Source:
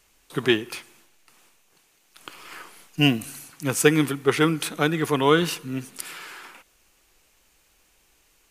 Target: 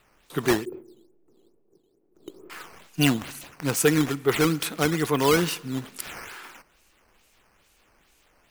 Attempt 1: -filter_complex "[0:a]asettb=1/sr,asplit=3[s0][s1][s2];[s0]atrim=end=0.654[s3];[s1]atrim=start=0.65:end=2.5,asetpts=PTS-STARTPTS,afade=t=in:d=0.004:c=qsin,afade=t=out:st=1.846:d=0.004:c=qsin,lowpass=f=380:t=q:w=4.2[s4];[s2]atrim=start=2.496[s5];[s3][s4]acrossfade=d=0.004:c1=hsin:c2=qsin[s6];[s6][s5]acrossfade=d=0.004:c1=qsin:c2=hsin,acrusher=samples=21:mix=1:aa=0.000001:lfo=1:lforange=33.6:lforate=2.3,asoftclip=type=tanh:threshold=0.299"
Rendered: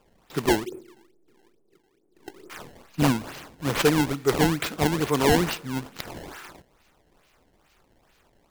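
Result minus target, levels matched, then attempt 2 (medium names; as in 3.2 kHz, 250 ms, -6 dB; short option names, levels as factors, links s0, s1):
decimation with a swept rate: distortion +7 dB
-filter_complex "[0:a]asettb=1/sr,asplit=3[s0][s1][s2];[s0]atrim=end=0.654[s3];[s1]atrim=start=0.65:end=2.5,asetpts=PTS-STARTPTS,afade=t=in:d=0.004:c=qsin,afade=t=out:st=1.846:d=0.004:c=qsin,lowpass=f=380:t=q:w=4.2[s4];[s2]atrim=start=2.496[s5];[s3][s4]acrossfade=d=0.004:c1=hsin:c2=qsin[s6];[s6][s5]acrossfade=d=0.004:c1=qsin:c2=hsin,acrusher=samples=7:mix=1:aa=0.000001:lfo=1:lforange=11.2:lforate=2.3,asoftclip=type=tanh:threshold=0.299"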